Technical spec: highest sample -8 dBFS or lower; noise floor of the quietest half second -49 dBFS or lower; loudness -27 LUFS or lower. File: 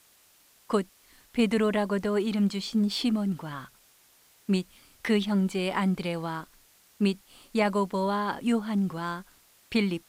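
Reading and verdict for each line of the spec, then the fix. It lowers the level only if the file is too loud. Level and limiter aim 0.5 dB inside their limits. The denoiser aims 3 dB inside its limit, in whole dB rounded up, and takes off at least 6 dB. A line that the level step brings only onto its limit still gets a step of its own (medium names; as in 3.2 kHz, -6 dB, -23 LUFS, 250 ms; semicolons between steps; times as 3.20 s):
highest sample -13.5 dBFS: pass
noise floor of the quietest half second -61 dBFS: pass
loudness -28.5 LUFS: pass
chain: none needed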